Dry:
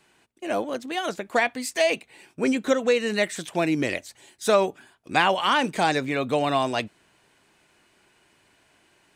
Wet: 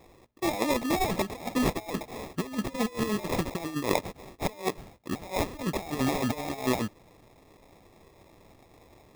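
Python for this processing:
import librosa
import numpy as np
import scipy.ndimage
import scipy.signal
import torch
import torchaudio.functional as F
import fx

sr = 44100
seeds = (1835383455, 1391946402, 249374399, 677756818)

y = fx.law_mismatch(x, sr, coded='mu', at=(0.95, 2.94))
y = fx.over_compress(y, sr, threshold_db=-29.0, ratio=-0.5)
y = fx.high_shelf(y, sr, hz=2100.0, db=10.5, at=(5.96, 6.41))
y = fx.sample_hold(y, sr, seeds[0], rate_hz=1500.0, jitter_pct=0)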